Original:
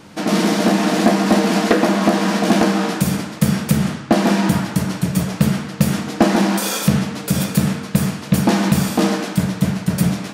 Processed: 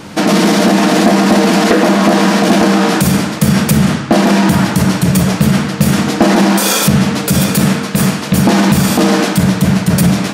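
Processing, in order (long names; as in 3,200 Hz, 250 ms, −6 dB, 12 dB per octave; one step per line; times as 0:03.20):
0:07.57–0:08.34: parametric band 61 Hz −9.5 dB 2 octaves
boost into a limiter +12.5 dB
level −1 dB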